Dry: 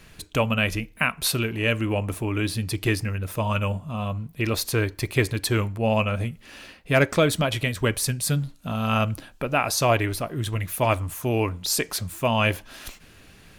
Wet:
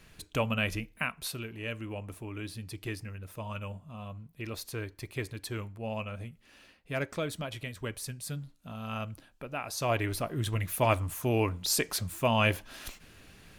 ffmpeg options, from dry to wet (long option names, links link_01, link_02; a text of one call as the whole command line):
ffmpeg -i in.wav -af "volume=3dB,afade=type=out:start_time=0.81:duration=0.51:silence=0.446684,afade=type=in:start_time=9.69:duration=0.56:silence=0.316228" out.wav